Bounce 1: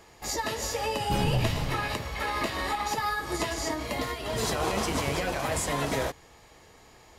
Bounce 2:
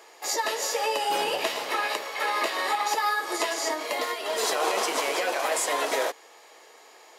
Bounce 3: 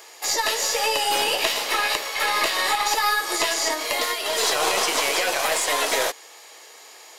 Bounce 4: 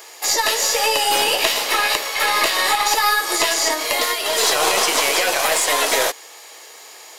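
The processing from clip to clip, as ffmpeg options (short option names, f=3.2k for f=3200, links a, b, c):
-af "highpass=f=390:w=0.5412,highpass=f=390:w=1.3066,volume=4dB"
-filter_complex "[0:a]highshelf=f=2.3k:g=11,acrossover=split=4600[a][b];[b]acompressor=threshold=-26dB:ratio=4:attack=1:release=60[c];[a][c]amix=inputs=2:normalize=0,aeval=exprs='0.473*(cos(1*acos(clip(val(0)/0.473,-1,1)))-cos(1*PI/2))+0.0335*(cos(4*acos(clip(val(0)/0.473,-1,1)))-cos(4*PI/2))':c=same,volume=1dB"
-af "acrusher=bits=10:mix=0:aa=0.000001,highshelf=f=9.8k:g=4,volume=4dB"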